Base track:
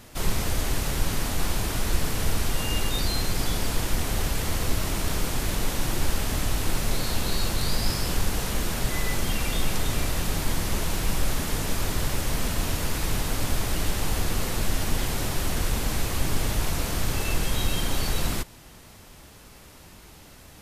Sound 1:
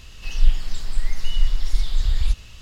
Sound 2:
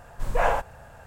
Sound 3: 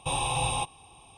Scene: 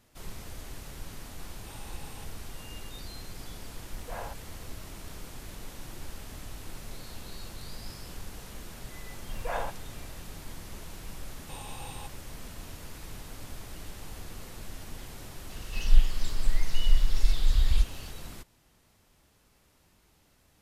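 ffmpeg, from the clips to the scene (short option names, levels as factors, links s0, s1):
-filter_complex "[3:a]asplit=2[s0][s1];[2:a]asplit=2[s2][s3];[0:a]volume=0.15[s4];[s0]acompressor=threshold=0.0158:ratio=6:attack=3.2:release=140:knee=1:detection=peak,atrim=end=1.17,asetpts=PTS-STARTPTS,volume=0.251,afade=t=in:d=0.004:c=hsin,afade=t=out:st=1.166:d=0.004:c=hsin,adelay=1610[s5];[s2]atrim=end=1.06,asetpts=PTS-STARTPTS,volume=0.133,afade=t=in:d=0.004:c=hsin,afade=t=out:st=1.056:d=0.004:c=hsin,adelay=164493S[s6];[s3]atrim=end=1.06,asetpts=PTS-STARTPTS,volume=0.299,afade=t=in:d=0.004:c=hsin,afade=t=out:st=1.056:d=0.004:c=hsin,adelay=9100[s7];[s1]atrim=end=1.17,asetpts=PTS-STARTPTS,volume=0.15,afade=t=in:d=0.004:c=hsin,afade=t=out:st=1.166:d=0.004:c=hsin,adelay=11430[s8];[1:a]atrim=end=2.61,asetpts=PTS-STARTPTS,volume=0.708,afade=t=in:d=0.004:c=hsin,afade=t=out:st=2.606:d=0.004:c=hsin,adelay=15500[s9];[s4][s5][s6][s7][s8][s9]amix=inputs=6:normalize=0"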